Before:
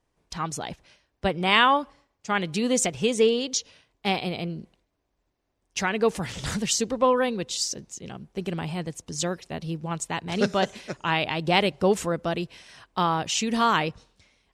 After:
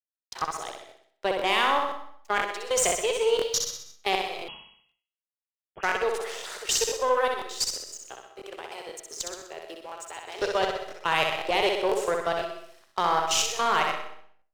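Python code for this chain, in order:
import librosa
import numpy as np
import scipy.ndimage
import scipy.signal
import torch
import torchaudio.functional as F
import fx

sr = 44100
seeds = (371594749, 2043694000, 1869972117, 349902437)

p1 = scipy.signal.sosfilt(scipy.signal.ellip(4, 1.0, 40, 380.0, 'highpass', fs=sr, output='sos'), x)
p2 = fx.level_steps(p1, sr, step_db=14)
p3 = np.sign(p2) * np.maximum(np.abs(p2) - 10.0 ** (-54.0 / 20.0), 0.0)
p4 = fx.cheby_harmonics(p3, sr, harmonics=(3, 4), levels_db=(-17, -22), full_scale_db=-14.5)
p5 = 10.0 ** (-22.0 / 20.0) * np.tanh(p4 / 10.0 ** (-22.0 / 20.0))
p6 = p5 + fx.echo_feedback(p5, sr, ms=63, feedback_pct=50, wet_db=-4, dry=0)
p7 = fx.rev_freeverb(p6, sr, rt60_s=0.47, hf_ratio=0.65, predelay_ms=80, drr_db=10.5)
p8 = fx.freq_invert(p7, sr, carrier_hz=3300, at=(4.48, 5.83))
p9 = fx.buffer_crackle(p8, sr, first_s=0.37, period_s=0.5, block=1024, kind='repeat')
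y = F.gain(torch.from_numpy(p9), 8.5).numpy()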